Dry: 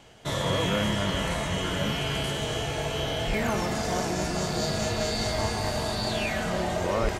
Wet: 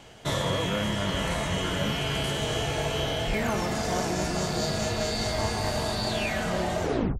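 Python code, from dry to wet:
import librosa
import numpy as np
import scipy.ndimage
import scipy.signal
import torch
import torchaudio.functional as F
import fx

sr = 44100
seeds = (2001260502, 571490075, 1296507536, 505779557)

y = fx.tape_stop_end(x, sr, length_s=0.37)
y = fx.rider(y, sr, range_db=10, speed_s=0.5)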